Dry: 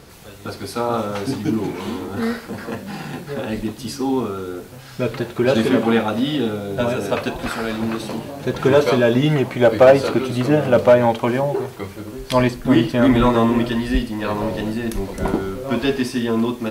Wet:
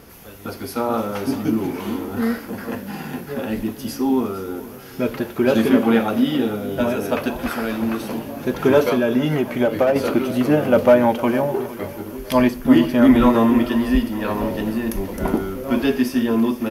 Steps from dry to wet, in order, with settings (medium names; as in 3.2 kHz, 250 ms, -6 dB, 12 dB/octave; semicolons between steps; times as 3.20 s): graphic EQ with 31 bands 125 Hz -7 dB, 250 Hz +5 dB, 4 kHz -7 dB, 8 kHz -7 dB, 12.5 kHz +11 dB; 8.87–9.96 s: compression 4:1, threshold -14 dBFS, peak gain reduction 7.5 dB; feedback delay 457 ms, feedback 43%, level -16 dB; trim -1 dB